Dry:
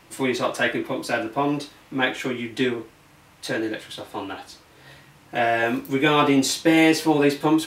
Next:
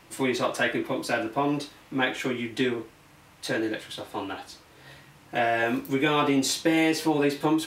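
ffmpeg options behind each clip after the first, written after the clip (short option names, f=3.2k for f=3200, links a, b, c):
-af "acompressor=threshold=-19dB:ratio=2.5,volume=-1.5dB"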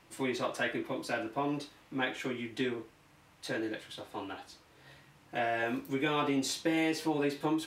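-af "highshelf=f=9.8k:g=-4,volume=-7.5dB"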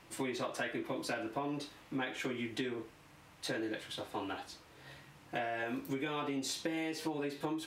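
-af "acompressor=threshold=-36dB:ratio=10,volume=2.5dB"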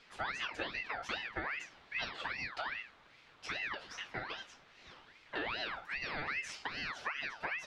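-af "lowpass=3.6k,flanger=delay=4.3:depth=1.4:regen=-54:speed=0.62:shape=sinusoidal,aeval=exprs='val(0)*sin(2*PI*1700*n/s+1700*0.4/2.5*sin(2*PI*2.5*n/s))':c=same,volume=5dB"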